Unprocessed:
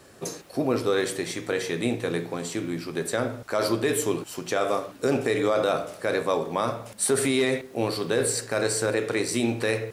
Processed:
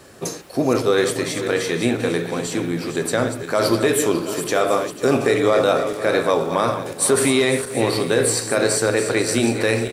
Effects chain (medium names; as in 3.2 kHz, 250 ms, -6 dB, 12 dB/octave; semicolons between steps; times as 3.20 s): backward echo that repeats 247 ms, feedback 52%, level -9 dB; on a send: delay 725 ms -17 dB; on the sum: trim +6 dB